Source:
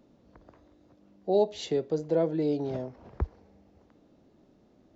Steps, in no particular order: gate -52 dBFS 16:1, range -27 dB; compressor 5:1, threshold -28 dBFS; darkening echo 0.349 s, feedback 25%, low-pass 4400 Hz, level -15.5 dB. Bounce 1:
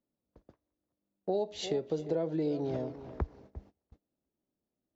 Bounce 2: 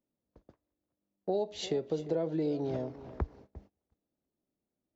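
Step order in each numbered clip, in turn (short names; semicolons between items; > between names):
darkening echo > gate > compressor; compressor > darkening echo > gate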